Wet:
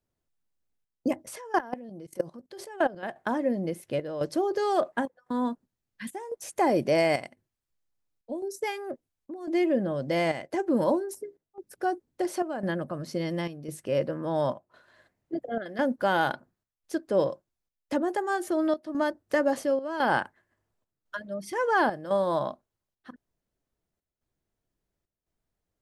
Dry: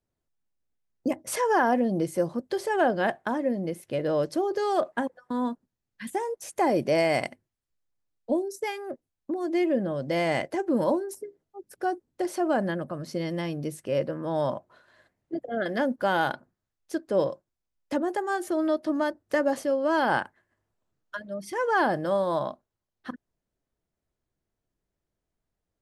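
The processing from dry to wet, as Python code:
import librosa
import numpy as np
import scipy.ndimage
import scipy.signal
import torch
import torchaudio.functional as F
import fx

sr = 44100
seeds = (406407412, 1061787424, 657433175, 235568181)

y = fx.chopper(x, sr, hz=0.95, depth_pct=65, duty_pct=80)
y = fx.level_steps(y, sr, step_db=21, at=(1.26, 3.03))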